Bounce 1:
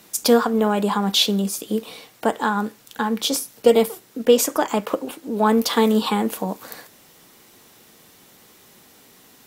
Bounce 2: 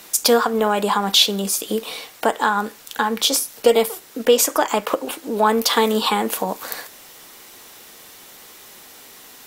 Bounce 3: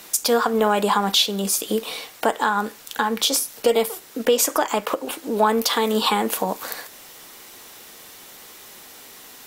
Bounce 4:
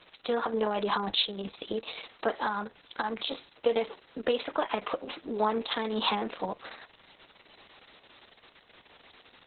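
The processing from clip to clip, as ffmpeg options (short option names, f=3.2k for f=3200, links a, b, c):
-filter_complex "[0:a]equalizer=f=150:w=0.51:g=-11,asplit=2[a][b];[b]acompressor=threshold=-28dB:ratio=6,volume=2dB[c];[a][c]amix=inputs=2:normalize=0,volume=1.5dB"
-af "alimiter=limit=-7dB:level=0:latency=1:release=243"
-af "volume=-8.5dB" -ar 48000 -c:a libopus -b:a 6k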